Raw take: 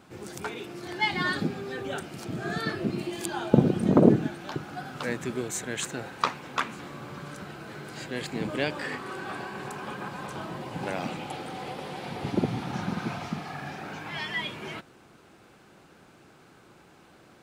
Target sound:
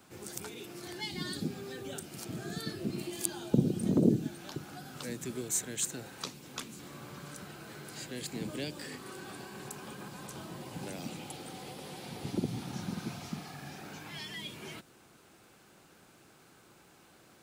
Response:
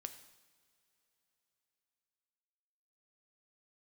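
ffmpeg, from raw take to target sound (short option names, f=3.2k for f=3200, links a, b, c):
-filter_complex "[0:a]acrossover=split=240|440|3400[a][b][c][d];[c]acompressor=threshold=-43dB:ratio=6[e];[a][b][e][d]amix=inputs=4:normalize=0,crystalizer=i=2:c=0,volume=-6dB"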